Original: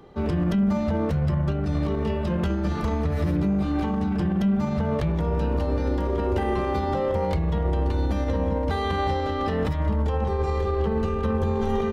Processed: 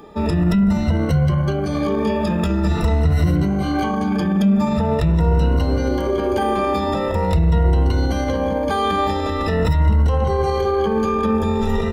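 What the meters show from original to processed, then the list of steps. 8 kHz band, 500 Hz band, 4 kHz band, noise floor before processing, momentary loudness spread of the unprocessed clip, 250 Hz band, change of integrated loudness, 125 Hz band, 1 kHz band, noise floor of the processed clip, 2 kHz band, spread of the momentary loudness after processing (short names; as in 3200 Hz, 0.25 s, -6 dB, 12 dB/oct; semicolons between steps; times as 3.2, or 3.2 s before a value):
n/a, +5.5 dB, +8.5 dB, -26 dBFS, 2 LU, +6.0 dB, +6.0 dB, +6.5 dB, +7.0 dB, -22 dBFS, +7.0 dB, 4 LU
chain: moving spectral ripple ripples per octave 2, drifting +0.44 Hz, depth 18 dB; high shelf 4000 Hz +6 dB; in parallel at +2 dB: limiter -17.5 dBFS, peak gain reduction 10 dB; on the sum: gain -2.5 dB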